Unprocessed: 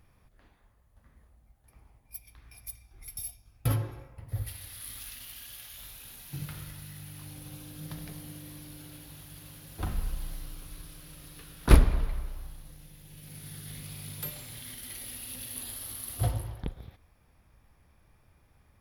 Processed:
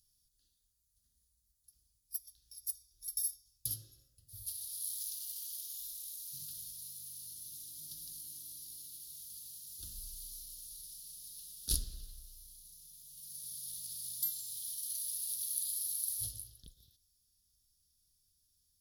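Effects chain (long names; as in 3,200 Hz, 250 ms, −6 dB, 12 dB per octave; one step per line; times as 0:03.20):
inverse Chebyshev high-pass filter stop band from 2,400 Hz, stop band 40 dB
spectral tilt −2 dB per octave
level +10.5 dB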